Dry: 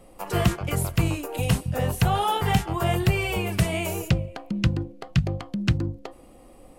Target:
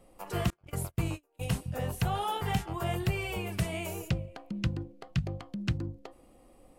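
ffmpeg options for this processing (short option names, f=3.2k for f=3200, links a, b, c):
-filter_complex "[0:a]asettb=1/sr,asplit=3[a][b][c];[a]atrim=end=0.504[d];[b]atrim=start=0.5:end=1.6,asetpts=PTS-STARTPTS,afade=t=in:d=0.004:c=qsin,afade=t=out:st=1.096:d=0.004:c=qsin,agate=range=-32dB:threshold=-25dB:ratio=16:detection=peak[e];[c]atrim=start=1.596[f];[d][e]acrossfade=d=0.004:c1=hsin:c2=qsin[g];[g][f]acrossfade=d=0.004:c1=qsin:c2=hsin,volume=-8.5dB"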